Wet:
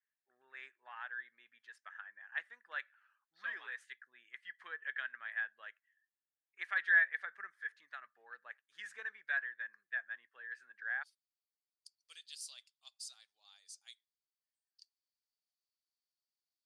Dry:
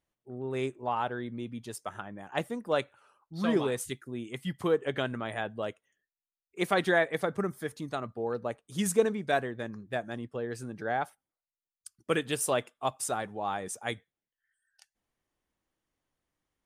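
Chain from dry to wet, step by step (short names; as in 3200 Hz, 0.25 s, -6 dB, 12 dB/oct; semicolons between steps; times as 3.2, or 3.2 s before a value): ladder band-pass 1800 Hz, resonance 80%, from 11.02 s 4800 Hz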